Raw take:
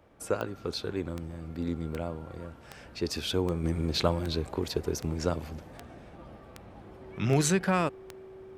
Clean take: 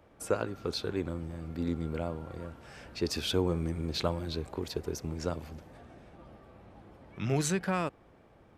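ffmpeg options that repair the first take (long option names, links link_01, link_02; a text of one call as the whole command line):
ffmpeg -i in.wav -af "adeclick=threshold=4,bandreject=frequency=380:width=30,asetnsamples=nb_out_samples=441:pad=0,asendcmd='3.64 volume volume -4.5dB',volume=0dB" out.wav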